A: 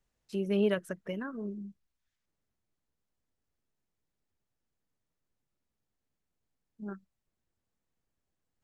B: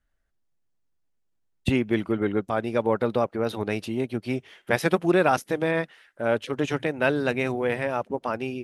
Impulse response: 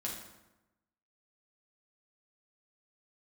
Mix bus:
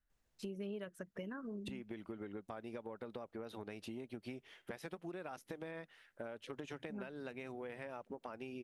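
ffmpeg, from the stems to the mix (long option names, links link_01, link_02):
-filter_complex "[0:a]adelay=100,volume=-1dB[link_01];[1:a]equalizer=frequency=120:width=3.1:gain=-4,acompressor=threshold=-29dB:ratio=6,volume=-9.5dB[link_02];[link_01][link_02]amix=inputs=2:normalize=0,acompressor=threshold=-42dB:ratio=6"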